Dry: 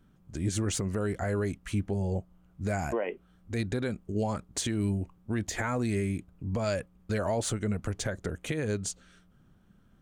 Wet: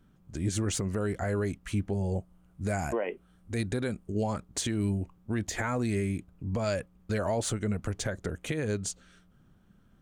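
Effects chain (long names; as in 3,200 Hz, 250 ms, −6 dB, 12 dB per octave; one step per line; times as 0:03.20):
0:02.05–0:04.10: parametric band 9,400 Hz +7.5 dB 0.46 octaves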